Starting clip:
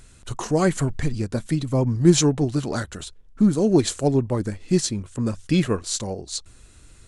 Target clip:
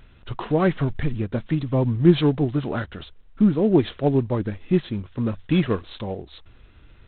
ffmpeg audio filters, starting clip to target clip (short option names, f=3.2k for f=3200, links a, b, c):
-ar 8000 -c:a adpcm_g726 -b:a 24k